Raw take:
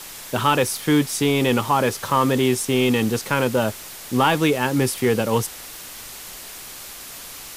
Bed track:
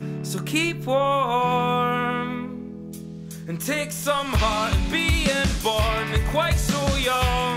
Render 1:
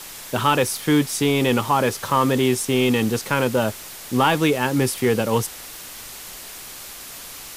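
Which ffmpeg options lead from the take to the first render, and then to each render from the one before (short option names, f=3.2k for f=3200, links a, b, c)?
-af anull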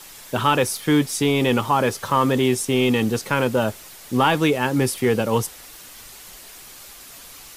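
-af "afftdn=nr=6:nf=-38"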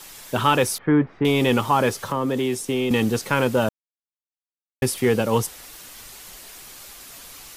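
-filter_complex "[0:a]asettb=1/sr,asplit=3[a][b][c];[a]atrim=end=0.784[d];[b]atrim=start=0.78:end=1.25,asetpts=PTS-STARTPTS,afade=t=in:d=0.004:c=qsin,afade=t=out:st=0.466:d=0.004:c=qsin,lowpass=f=1.8k:w=0.5412,lowpass=f=1.8k:w=1.3066[e];[c]atrim=start=1.246[f];[d][e]acrossfade=d=0.004:c1=hsin:c2=qsin[g];[g][f]acrossfade=d=0.004:c1=qsin:c2=hsin,asettb=1/sr,asplit=3[h][i][j];[h]atrim=end=1.944[k];[i]atrim=start=1.94:end=2.91,asetpts=PTS-STARTPTS,afade=t=in:d=0.004:c=qsin,afade=t=out:st=0.966:d=0.004:c=qsin,acrossover=split=210|650[l][m][n];[l]acompressor=threshold=-34dB:ratio=4[o];[m]acompressor=threshold=-22dB:ratio=4[p];[n]acompressor=threshold=-30dB:ratio=4[q];[o][p][q]amix=inputs=3:normalize=0[r];[j]atrim=start=2.906[s];[k][r]acrossfade=d=0.004:c1=hsin:c2=qsin[t];[t][s]acrossfade=d=0.004:c1=qsin:c2=hsin,asplit=3[u][v][w];[u]atrim=end=3.69,asetpts=PTS-STARTPTS,afade=t=out:st=3.686:d=0.004:c=hsin[x];[v]atrim=start=3.69:end=4.82,asetpts=PTS-STARTPTS,volume=0[y];[w]atrim=start=4.82,asetpts=PTS-STARTPTS,afade=t=in:d=0.004:c=hsin[z];[x][y][z]concat=n=3:v=0:a=1"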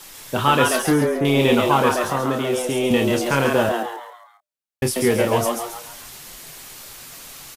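-filter_complex "[0:a]asplit=2[a][b];[b]adelay=29,volume=-7dB[c];[a][c]amix=inputs=2:normalize=0,asplit=6[d][e][f][g][h][i];[e]adelay=137,afreqshift=120,volume=-4dB[j];[f]adelay=274,afreqshift=240,volume=-11.3dB[k];[g]adelay=411,afreqshift=360,volume=-18.7dB[l];[h]adelay=548,afreqshift=480,volume=-26dB[m];[i]adelay=685,afreqshift=600,volume=-33.3dB[n];[d][j][k][l][m][n]amix=inputs=6:normalize=0"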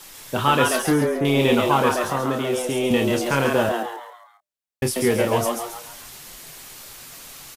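-af "volume=-1.5dB"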